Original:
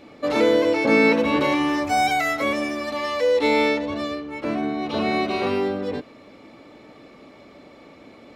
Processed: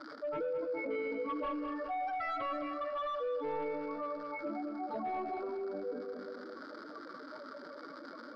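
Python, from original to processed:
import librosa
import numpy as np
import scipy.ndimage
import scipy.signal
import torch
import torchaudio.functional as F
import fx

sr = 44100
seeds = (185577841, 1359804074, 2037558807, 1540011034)

p1 = fx.spec_expand(x, sr, power=3.1)
p2 = fx.dereverb_blind(p1, sr, rt60_s=0.63)
p3 = fx.rider(p2, sr, range_db=4, speed_s=0.5)
p4 = p2 + (p3 * librosa.db_to_amplitude(2.5))
p5 = fx.vibrato(p4, sr, rate_hz=0.87, depth_cents=8.8)
p6 = fx.dmg_crackle(p5, sr, seeds[0], per_s=200.0, level_db=-30.0)
p7 = fx.double_bandpass(p6, sr, hz=2600.0, octaves=1.8)
p8 = np.clip(p7, -10.0 ** (-35.0 / 20.0), 10.0 ** (-35.0 / 20.0))
p9 = fx.air_absorb(p8, sr, metres=420.0)
p10 = p9 + fx.echo_feedback(p9, sr, ms=210, feedback_pct=47, wet_db=-9.0, dry=0)
p11 = fx.room_shoebox(p10, sr, seeds[1], volume_m3=2500.0, walls='mixed', distance_m=0.56)
p12 = fx.env_flatten(p11, sr, amount_pct=50)
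y = p12 * librosa.db_to_amplitude(2.0)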